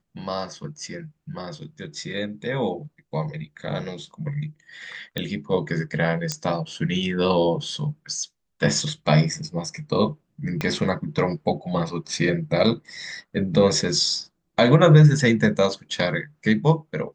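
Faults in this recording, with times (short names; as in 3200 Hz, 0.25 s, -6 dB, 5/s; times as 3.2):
5.18 pop -13 dBFS
6.32 pop -11 dBFS
10.61 pop -11 dBFS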